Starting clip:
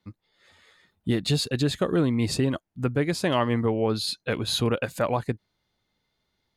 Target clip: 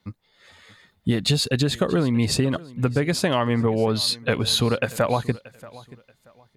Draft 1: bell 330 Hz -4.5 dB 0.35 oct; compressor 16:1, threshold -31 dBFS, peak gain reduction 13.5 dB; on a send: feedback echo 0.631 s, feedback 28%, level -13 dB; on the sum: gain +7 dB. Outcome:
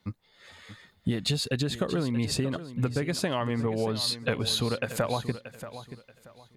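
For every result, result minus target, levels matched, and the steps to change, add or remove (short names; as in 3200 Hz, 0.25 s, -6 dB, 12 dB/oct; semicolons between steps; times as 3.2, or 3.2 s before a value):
compressor: peak gain reduction +7.5 dB; echo-to-direct +7.5 dB
change: compressor 16:1, threshold -23 dBFS, peak gain reduction 6 dB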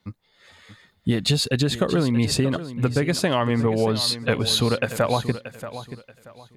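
echo-to-direct +7.5 dB
change: feedback echo 0.631 s, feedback 28%, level -20.5 dB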